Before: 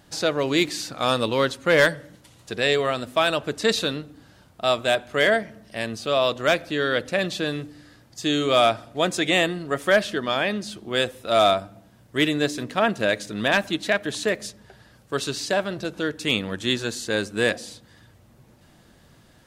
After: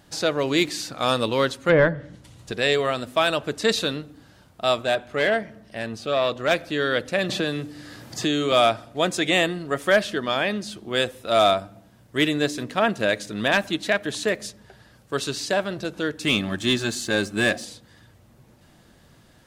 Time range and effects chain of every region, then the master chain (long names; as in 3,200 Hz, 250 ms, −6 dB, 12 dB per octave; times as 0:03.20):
0:01.69–0:02.52: low-shelf EQ 200 Hz +10 dB + treble cut that deepens with the level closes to 1,500 Hz, closed at −14 dBFS
0:04.82–0:06.51: high-shelf EQ 4,800 Hz −6.5 dB + saturating transformer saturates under 870 Hz
0:07.29–0:08.52: high-pass filter 58 Hz + multiband upward and downward compressor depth 70%
0:16.23–0:17.65: notch comb filter 480 Hz + leveller curve on the samples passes 1
whole clip: no processing